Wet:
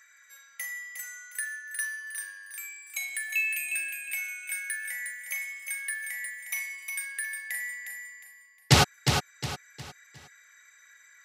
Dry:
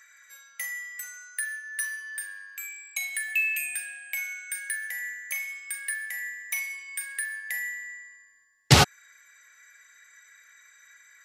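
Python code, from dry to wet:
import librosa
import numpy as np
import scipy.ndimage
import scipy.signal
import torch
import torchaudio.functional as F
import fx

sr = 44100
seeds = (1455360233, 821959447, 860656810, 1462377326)

y = fx.echo_feedback(x, sr, ms=359, feedback_pct=35, wet_db=-6.0)
y = F.gain(torch.from_numpy(y), -2.5).numpy()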